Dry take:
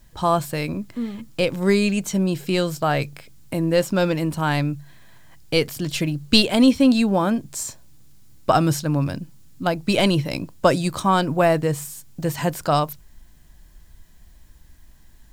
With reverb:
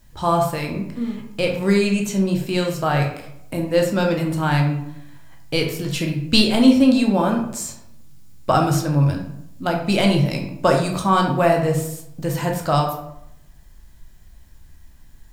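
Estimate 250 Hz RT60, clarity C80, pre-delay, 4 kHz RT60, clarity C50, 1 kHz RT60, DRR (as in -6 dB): 0.85 s, 9.5 dB, 12 ms, 0.45 s, 6.0 dB, 0.75 s, 1.0 dB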